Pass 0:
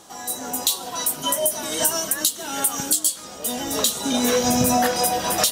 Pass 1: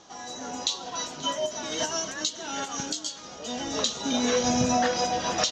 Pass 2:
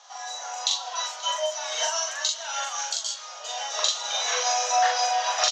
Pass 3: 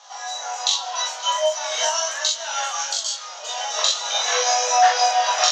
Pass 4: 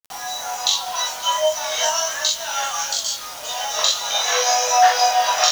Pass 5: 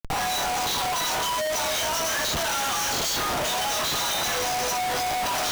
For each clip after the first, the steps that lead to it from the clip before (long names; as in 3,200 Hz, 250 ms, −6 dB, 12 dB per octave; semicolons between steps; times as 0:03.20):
elliptic low-pass filter 6,500 Hz, stop band 40 dB; single-tap delay 533 ms −20.5 dB; level −3.5 dB
Butterworth high-pass 640 Hz 36 dB per octave; double-tracking delay 42 ms −2 dB; level +1.5 dB
low-shelf EQ 320 Hz +4 dB; chorus effect 0.44 Hz, delay 18 ms, depth 5.8 ms; level +7.5 dB
bit reduction 6 bits; level +1.5 dB
brickwall limiter −11 dBFS, peak gain reduction 9 dB; comparator with hysteresis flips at −28.5 dBFS; level −3 dB